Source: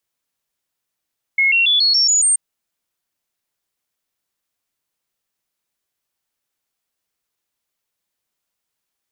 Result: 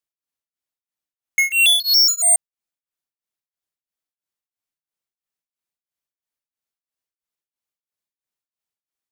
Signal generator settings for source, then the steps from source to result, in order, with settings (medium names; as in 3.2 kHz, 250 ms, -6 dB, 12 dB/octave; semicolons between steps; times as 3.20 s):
stepped sine 2.17 kHz up, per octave 3, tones 7, 0.14 s, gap 0.00 s -11.5 dBFS
waveshaping leveller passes 5; tremolo of two beating tones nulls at 3 Hz